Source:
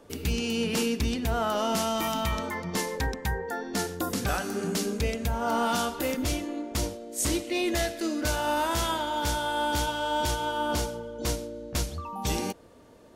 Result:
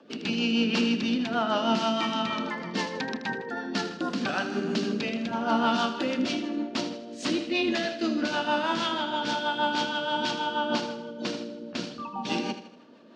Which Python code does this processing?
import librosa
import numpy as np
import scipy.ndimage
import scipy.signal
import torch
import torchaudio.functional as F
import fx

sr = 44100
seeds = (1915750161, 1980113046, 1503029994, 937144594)

p1 = fx.octave_divider(x, sr, octaves=2, level_db=2.0)
p2 = fx.high_shelf(p1, sr, hz=2100.0, db=12.0)
p3 = fx.rotary(p2, sr, hz=6.3)
p4 = fx.cabinet(p3, sr, low_hz=200.0, low_slope=24, high_hz=3800.0, hz=(230.0, 450.0, 2100.0, 3500.0), db=(6, -5, -7, -5))
p5 = p4 + fx.echo_feedback(p4, sr, ms=79, feedback_pct=45, wet_db=-11, dry=0)
y = p5 * librosa.db_to_amplitude(2.0)